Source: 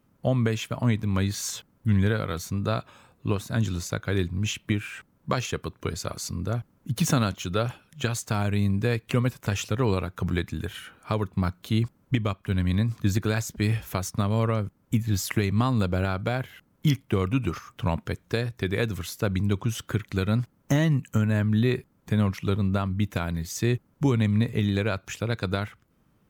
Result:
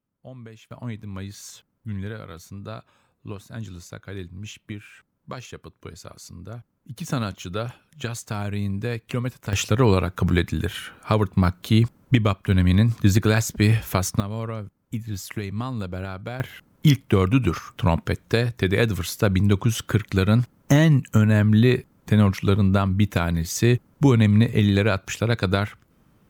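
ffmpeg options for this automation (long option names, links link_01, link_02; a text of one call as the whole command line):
ffmpeg -i in.wav -af "asetnsamples=nb_out_samples=441:pad=0,asendcmd='0.71 volume volume -9dB;7.12 volume volume -2.5dB;9.53 volume volume 6.5dB;14.2 volume volume -5.5dB;16.4 volume volume 6dB',volume=-17.5dB" out.wav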